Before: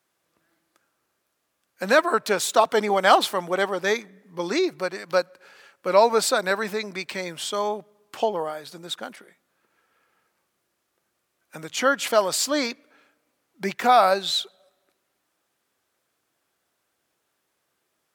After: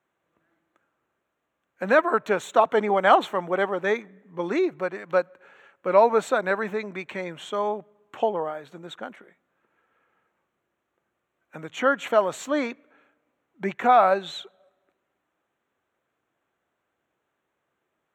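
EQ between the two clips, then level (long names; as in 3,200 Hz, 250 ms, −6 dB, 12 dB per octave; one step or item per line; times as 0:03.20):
moving average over 9 samples
0.0 dB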